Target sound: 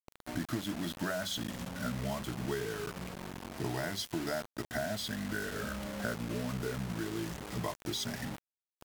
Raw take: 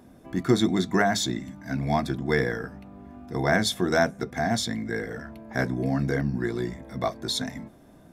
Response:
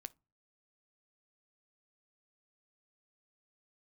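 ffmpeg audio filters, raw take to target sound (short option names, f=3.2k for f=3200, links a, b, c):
-af "afftfilt=real='re*pow(10,7/40*sin(2*PI*(0.75*log(max(b,1)*sr/1024/100)/log(2)-(-0.25)*(pts-256)/sr)))':imag='im*pow(10,7/40*sin(2*PI*(0.75*log(max(b,1)*sr/1024/100)/log(2)-(-0.25)*(pts-256)/sr)))':win_size=1024:overlap=0.75,adynamicequalizer=threshold=0.0178:dfrequency=230:dqfactor=1:tfrequency=230:tqfactor=1:attack=5:release=100:ratio=0.375:range=1.5:mode=cutabove:tftype=bell,acompressor=threshold=-33dB:ratio=8,acrusher=bits=6:mix=0:aa=0.000001,asetrate=40517,aresample=44100"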